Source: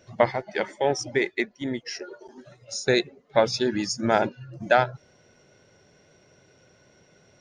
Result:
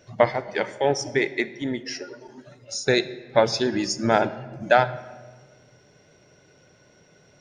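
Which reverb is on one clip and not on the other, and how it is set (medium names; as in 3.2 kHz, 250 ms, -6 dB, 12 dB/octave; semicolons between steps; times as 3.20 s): simulated room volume 1300 m³, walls mixed, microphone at 0.4 m; trim +1.5 dB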